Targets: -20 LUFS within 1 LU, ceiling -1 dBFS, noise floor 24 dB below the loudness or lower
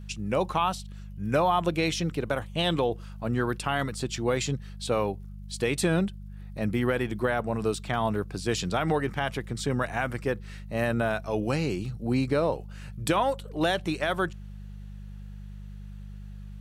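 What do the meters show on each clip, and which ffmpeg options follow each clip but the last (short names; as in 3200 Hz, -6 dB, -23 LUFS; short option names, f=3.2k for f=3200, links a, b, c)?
hum 50 Hz; harmonics up to 200 Hz; hum level -38 dBFS; loudness -28.5 LUFS; peak -12.5 dBFS; loudness target -20.0 LUFS
-> -af "bandreject=f=50:t=h:w=4,bandreject=f=100:t=h:w=4,bandreject=f=150:t=h:w=4,bandreject=f=200:t=h:w=4"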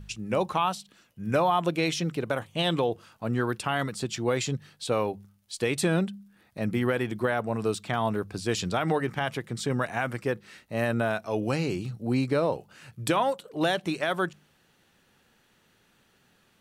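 hum none; loudness -28.5 LUFS; peak -12.5 dBFS; loudness target -20.0 LUFS
-> -af "volume=8.5dB"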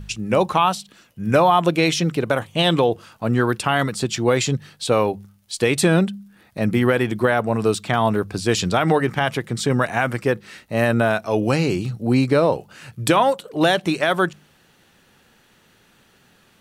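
loudness -20.0 LUFS; peak -4.0 dBFS; noise floor -57 dBFS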